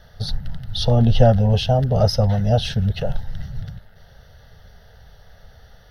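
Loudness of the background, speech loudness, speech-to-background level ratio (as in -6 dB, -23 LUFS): -35.5 LUFS, -19.0 LUFS, 16.5 dB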